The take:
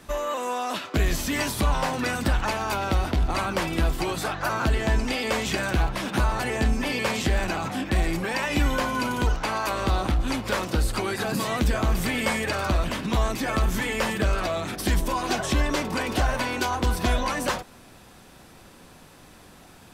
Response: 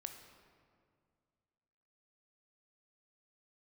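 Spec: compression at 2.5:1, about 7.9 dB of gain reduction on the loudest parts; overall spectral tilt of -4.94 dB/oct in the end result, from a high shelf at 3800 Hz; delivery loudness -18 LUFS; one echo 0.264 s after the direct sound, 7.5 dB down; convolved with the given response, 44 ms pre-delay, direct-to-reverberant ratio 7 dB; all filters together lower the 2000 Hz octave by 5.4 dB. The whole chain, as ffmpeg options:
-filter_complex "[0:a]equalizer=f=2k:t=o:g=-5,highshelf=f=3.8k:g=-8.5,acompressor=threshold=-30dB:ratio=2.5,aecho=1:1:264:0.422,asplit=2[a][b];[1:a]atrim=start_sample=2205,adelay=44[c];[b][c]afir=irnorm=-1:irlink=0,volume=-3.5dB[d];[a][d]amix=inputs=2:normalize=0,volume=13dB"

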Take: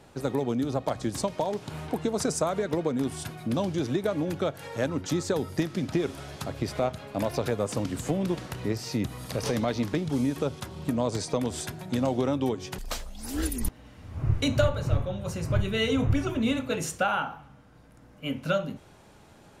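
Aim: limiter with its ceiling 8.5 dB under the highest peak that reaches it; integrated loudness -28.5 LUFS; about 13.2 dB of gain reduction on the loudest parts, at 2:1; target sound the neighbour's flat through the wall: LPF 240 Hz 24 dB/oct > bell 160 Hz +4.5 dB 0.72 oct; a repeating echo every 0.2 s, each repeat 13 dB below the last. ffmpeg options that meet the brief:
-af "acompressor=threshold=-43dB:ratio=2,alimiter=level_in=7dB:limit=-24dB:level=0:latency=1,volume=-7dB,lowpass=f=240:w=0.5412,lowpass=f=240:w=1.3066,equalizer=f=160:t=o:w=0.72:g=4.5,aecho=1:1:200|400|600:0.224|0.0493|0.0108,volume=15dB"

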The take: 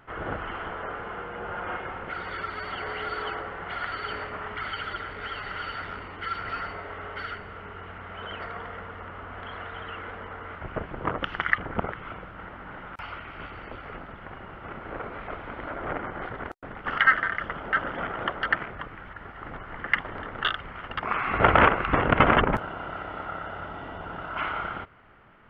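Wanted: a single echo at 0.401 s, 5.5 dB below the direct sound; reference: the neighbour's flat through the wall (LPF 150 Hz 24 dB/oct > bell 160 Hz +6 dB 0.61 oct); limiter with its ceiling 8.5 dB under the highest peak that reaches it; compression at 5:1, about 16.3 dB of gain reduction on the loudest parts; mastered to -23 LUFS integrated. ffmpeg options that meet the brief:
-af "acompressor=threshold=-32dB:ratio=5,alimiter=limit=-23.5dB:level=0:latency=1,lowpass=f=150:w=0.5412,lowpass=f=150:w=1.3066,equalizer=f=160:t=o:w=0.61:g=6,aecho=1:1:401:0.531,volume=26dB"

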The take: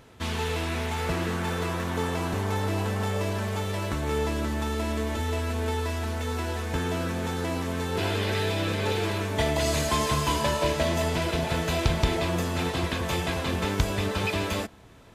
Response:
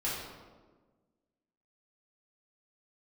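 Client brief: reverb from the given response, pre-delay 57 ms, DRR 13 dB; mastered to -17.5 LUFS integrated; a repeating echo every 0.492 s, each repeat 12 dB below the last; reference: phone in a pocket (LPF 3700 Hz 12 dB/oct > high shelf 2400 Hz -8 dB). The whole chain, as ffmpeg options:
-filter_complex "[0:a]aecho=1:1:492|984|1476:0.251|0.0628|0.0157,asplit=2[a][b];[1:a]atrim=start_sample=2205,adelay=57[c];[b][c]afir=irnorm=-1:irlink=0,volume=-19dB[d];[a][d]amix=inputs=2:normalize=0,lowpass=3.7k,highshelf=f=2.4k:g=-8,volume=10.5dB"

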